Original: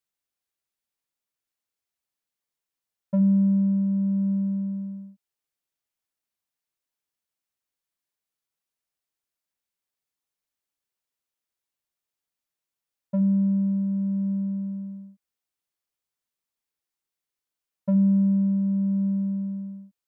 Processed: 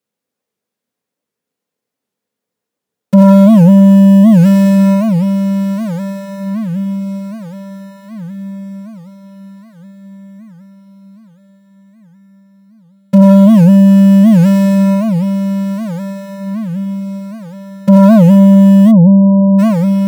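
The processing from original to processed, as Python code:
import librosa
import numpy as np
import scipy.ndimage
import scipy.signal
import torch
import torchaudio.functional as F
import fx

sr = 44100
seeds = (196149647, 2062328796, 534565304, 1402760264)

p1 = fx.halfwave_hold(x, sr)
p2 = scipy.signal.sosfilt(scipy.signal.butter(2, 110.0, 'highpass', fs=sr, output='sos'), p1)
p3 = fx.leveller(p2, sr, passes=1)
p4 = fx.small_body(p3, sr, hz=(220.0, 440.0), ring_ms=35, db=17)
p5 = p4 + fx.echo_diffused(p4, sr, ms=1540, feedback_pct=41, wet_db=-13.0, dry=0)
p6 = fx.rev_fdn(p5, sr, rt60_s=2.3, lf_ratio=1.0, hf_ratio=0.55, size_ms=57.0, drr_db=1.5)
p7 = fx.fold_sine(p6, sr, drive_db=11, ceiling_db=7.0)
p8 = p6 + (p7 * librosa.db_to_amplitude(-10.0))
p9 = fx.brickwall_lowpass(p8, sr, high_hz=1100.0, at=(18.91, 19.58), fade=0.02)
p10 = fx.record_warp(p9, sr, rpm=78.0, depth_cents=250.0)
y = p10 * librosa.db_to_amplitude(-5.5)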